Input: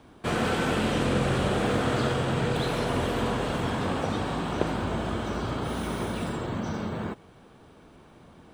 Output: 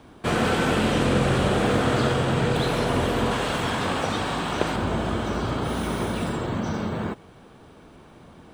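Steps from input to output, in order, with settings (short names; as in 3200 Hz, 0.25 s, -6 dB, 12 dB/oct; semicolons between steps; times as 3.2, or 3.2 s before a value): 3.31–4.76 tilt shelf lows -4 dB, about 790 Hz; gain +4 dB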